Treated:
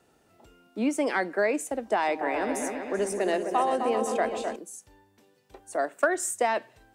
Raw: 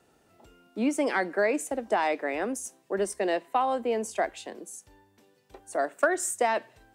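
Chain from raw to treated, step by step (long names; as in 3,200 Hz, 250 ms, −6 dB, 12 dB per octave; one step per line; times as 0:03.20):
0:01.95–0:04.56: echo whose low-pass opens from repeat to repeat 129 ms, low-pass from 400 Hz, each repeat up 2 octaves, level −3 dB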